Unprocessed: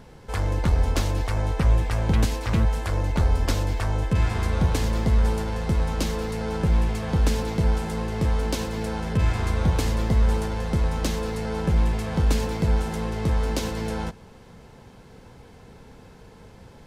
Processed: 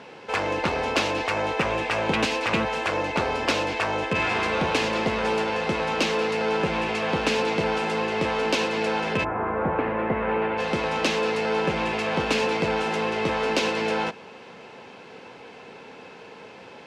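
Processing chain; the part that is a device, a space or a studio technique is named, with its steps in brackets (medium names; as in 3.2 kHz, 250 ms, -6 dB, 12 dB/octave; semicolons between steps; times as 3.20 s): intercom (band-pass 340–4700 Hz; peaking EQ 2.6 kHz +8.5 dB 0.36 oct; saturation -20 dBFS, distortion -22 dB); 9.23–10.57 s: low-pass 1.3 kHz -> 2.6 kHz 24 dB/octave; trim +8 dB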